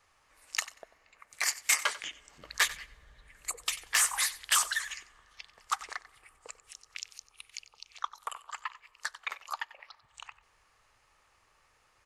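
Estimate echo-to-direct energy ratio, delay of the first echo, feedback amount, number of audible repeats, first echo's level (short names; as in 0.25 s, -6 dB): -17.0 dB, 93 ms, 19%, 2, -17.0 dB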